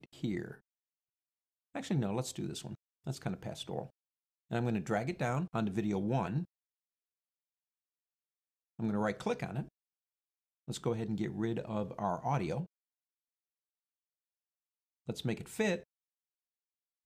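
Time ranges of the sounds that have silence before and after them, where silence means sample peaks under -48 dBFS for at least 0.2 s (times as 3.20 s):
1.75–2.75 s
3.06–3.87 s
4.51–6.45 s
8.79–9.68 s
10.68–12.66 s
15.08–15.82 s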